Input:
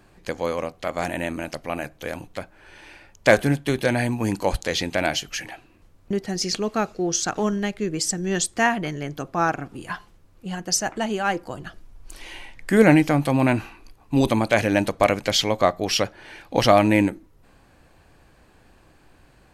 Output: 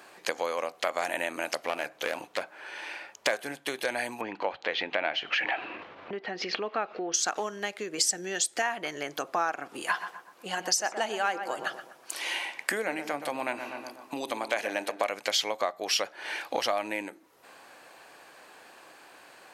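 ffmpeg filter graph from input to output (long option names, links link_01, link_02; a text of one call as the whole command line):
ffmpeg -i in.wav -filter_complex "[0:a]asettb=1/sr,asplit=3[link_01][link_02][link_03];[link_01]atrim=end=1.644[link_04];[link_02]atrim=start=1.64:end=3.27,asetpts=PTS-STARTPTS,afade=type=in:duration=0.004:curve=qsin,afade=type=out:start_time=1.626:duration=0.004:curve=qsin,highshelf=frequency=6000:gain=-7.5,aeval=exprs='clip(val(0),-1,0.0335)':channel_layout=same[link_05];[link_03]atrim=start=3.266[link_06];[link_04][link_05]acrossfade=duration=0.004:curve1=hsin:curve2=qsin[link_07];[link_07][link_06]acrossfade=duration=0.004:curve1=qsin:curve2=hsin,asettb=1/sr,asplit=3[link_08][link_09][link_10];[link_08]atrim=end=4.214[link_11];[link_09]atrim=start=4.21:end=7.14,asetpts=PTS-STARTPTS,afade=type=in:duration=0.004:curve=qsin,afade=type=out:start_time=2.926:duration=0.004:curve=qsin,lowpass=frequency=3200:width=0.5412,lowpass=frequency=3200:width=1.3066,acompressor=mode=upward:threshold=-25dB:ratio=2.5:attack=3.2:release=140:knee=2.83:detection=peak[link_12];[link_10]atrim=start=7.136[link_13];[link_11][link_12]acrossfade=duration=0.004:curve1=hsin:curve2=qsin[link_14];[link_14][link_13]acrossfade=duration=0.004:curve1=qsin:curve2=hsin,asettb=1/sr,asplit=3[link_15][link_16][link_17];[link_15]atrim=end=7.984[link_18];[link_16]atrim=start=7.98:end=8.62,asetpts=PTS-STARTPTS,afade=type=in:duration=0.004:curve=qsin,afade=type=out:start_time=0.636:duration=0.004:curve=qsin,equalizer=frequency=1100:width_type=o:width=0.2:gain=-14,acontrast=36[link_19];[link_17]atrim=start=8.616[link_20];[link_18][link_19]acrossfade=duration=0.004:curve1=hsin:curve2=qsin[link_21];[link_21][link_20]acrossfade=duration=0.004:curve1=qsin:curve2=hsin,asettb=1/sr,asplit=3[link_22][link_23][link_24];[link_22]atrim=end=9.824[link_25];[link_23]atrim=start=9.82:end=15.02,asetpts=PTS-STARTPTS,afade=type=in:duration=0.004:curve=qsin,afade=type=out:start_time=5.196:duration=0.004:curve=qsin,highpass=140,asplit=2[link_26][link_27];[link_27]adelay=123,lowpass=frequency=1700:poles=1,volume=-11dB,asplit=2[link_28][link_29];[link_29]adelay=123,lowpass=frequency=1700:poles=1,volume=0.46,asplit=2[link_30][link_31];[link_31]adelay=123,lowpass=frequency=1700:poles=1,volume=0.46,asplit=2[link_32][link_33];[link_33]adelay=123,lowpass=frequency=1700:poles=1,volume=0.46,asplit=2[link_34][link_35];[link_35]adelay=123,lowpass=frequency=1700:poles=1,volume=0.46[link_36];[link_26][link_28][link_30][link_32][link_34][link_36]amix=inputs=6:normalize=0,atrim=end_sample=229320[link_37];[link_24]atrim=start=15.016[link_38];[link_25][link_37]acrossfade=duration=0.004:curve1=hsin:curve2=qsin[link_39];[link_39][link_38]acrossfade=duration=0.004:curve1=qsin:curve2=hsin,acompressor=threshold=-31dB:ratio=10,highpass=560,volume=8dB" out.wav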